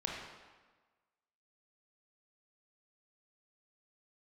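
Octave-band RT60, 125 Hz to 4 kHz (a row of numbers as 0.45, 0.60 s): 1.2, 1.3, 1.3, 1.4, 1.2, 1.0 s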